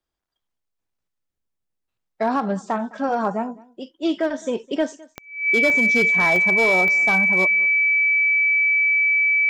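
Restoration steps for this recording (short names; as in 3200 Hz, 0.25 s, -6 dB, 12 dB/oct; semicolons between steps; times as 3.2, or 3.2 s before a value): clip repair -12 dBFS; de-click; notch 2300 Hz, Q 30; inverse comb 0.209 s -23 dB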